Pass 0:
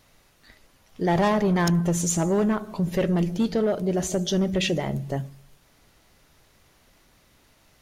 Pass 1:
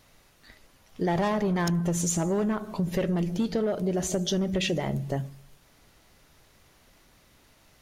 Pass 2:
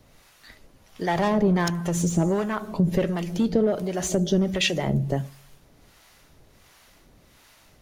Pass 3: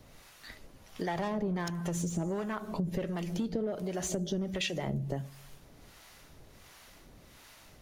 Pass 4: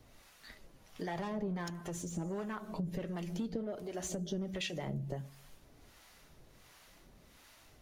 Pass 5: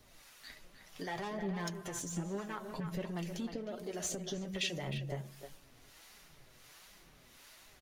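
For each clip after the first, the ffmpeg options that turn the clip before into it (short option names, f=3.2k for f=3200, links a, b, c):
-af "acompressor=threshold=-23dB:ratio=6"
-filter_complex "[0:a]acrossover=split=190|1200|5600[a][b][c][d];[d]asoftclip=type=tanh:threshold=-31.5dB[e];[a][b][c][e]amix=inputs=4:normalize=0,acrossover=split=680[f][g];[f]aeval=exprs='val(0)*(1-0.7/2+0.7/2*cos(2*PI*1.4*n/s))':c=same[h];[g]aeval=exprs='val(0)*(1-0.7/2-0.7/2*cos(2*PI*1.4*n/s))':c=same[i];[h][i]amix=inputs=2:normalize=0,volume=7dB"
-af "acompressor=threshold=-34dB:ratio=3"
-af "flanger=delay=2.5:depth=4.5:regen=-61:speed=0.52:shape=triangular,volume=-1dB"
-filter_complex "[0:a]tiltshelf=f=1.4k:g=-3.5,flanger=delay=4.6:depth=3.8:regen=48:speed=1.3:shape=triangular,asplit=2[a][b];[b]adelay=310,highpass=300,lowpass=3.4k,asoftclip=type=hard:threshold=-37dB,volume=-7dB[c];[a][c]amix=inputs=2:normalize=0,volume=5dB"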